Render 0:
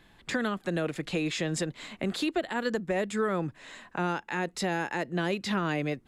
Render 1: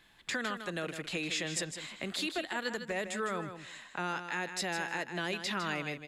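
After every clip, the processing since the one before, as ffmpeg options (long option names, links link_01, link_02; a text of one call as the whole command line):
ffmpeg -i in.wav -af "tiltshelf=frequency=940:gain=-5.5,aecho=1:1:156|312:0.355|0.0568,volume=-5dB" out.wav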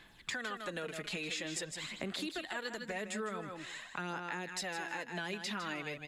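ffmpeg -i in.wav -af "aphaser=in_gain=1:out_gain=1:delay=4.8:decay=0.46:speed=0.47:type=sinusoidal,acompressor=threshold=-39dB:ratio=3,volume=1dB" out.wav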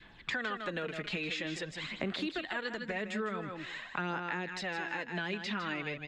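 ffmpeg -i in.wav -af "lowpass=3400,adynamicequalizer=threshold=0.00251:dfrequency=750:dqfactor=0.87:tfrequency=750:tqfactor=0.87:attack=5:release=100:ratio=0.375:range=2:mode=cutabove:tftype=bell,volume=5dB" out.wav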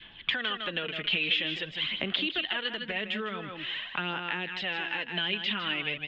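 ffmpeg -i in.wav -af "lowpass=frequency=3100:width_type=q:width=7.6" out.wav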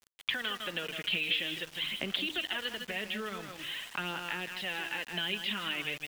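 ffmpeg -i in.wav -af "bandreject=frequency=153.3:width_type=h:width=4,bandreject=frequency=306.6:width_type=h:width=4,bandreject=frequency=459.9:width_type=h:width=4,bandreject=frequency=613.2:width_type=h:width=4,bandreject=frequency=766.5:width_type=h:width=4,bandreject=frequency=919.8:width_type=h:width=4,bandreject=frequency=1073.1:width_type=h:width=4,bandreject=frequency=1226.4:width_type=h:width=4,bandreject=frequency=1379.7:width_type=h:width=4,bandreject=frequency=1533:width_type=h:width=4,bandreject=frequency=1686.3:width_type=h:width=4,bandreject=frequency=1839.6:width_type=h:width=4,bandreject=frequency=1992.9:width_type=h:width=4,aeval=exprs='val(0)*gte(abs(val(0)),0.01)':channel_layout=same,volume=-3.5dB" out.wav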